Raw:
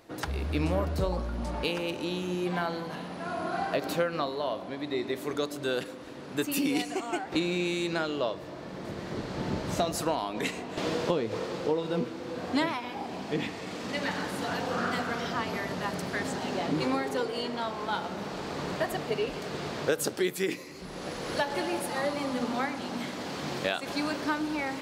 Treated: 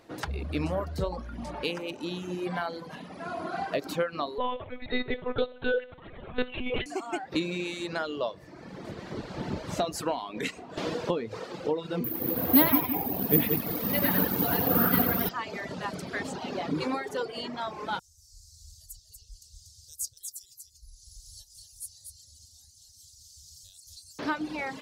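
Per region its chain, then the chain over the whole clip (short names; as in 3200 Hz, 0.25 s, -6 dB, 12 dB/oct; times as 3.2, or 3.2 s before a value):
4.38–6.86 comb 2.1 ms, depth 97% + feedback echo 63 ms, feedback 23%, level -8 dB + monotone LPC vocoder at 8 kHz 250 Hz
12.04–15.29 low shelf 390 Hz +10.5 dB + split-band echo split 560 Hz, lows 0.175 s, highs 91 ms, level -3.5 dB + careless resampling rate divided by 3×, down filtered, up zero stuff
17.99–24.19 inverse Chebyshev band-stop 170–2400 Hz, stop band 50 dB + tone controls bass +5 dB, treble +3 dB + echo 0.239 s -5 dB
whole clip: high shelf 9400 Hz -5 dB; reverb removal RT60 1.2 s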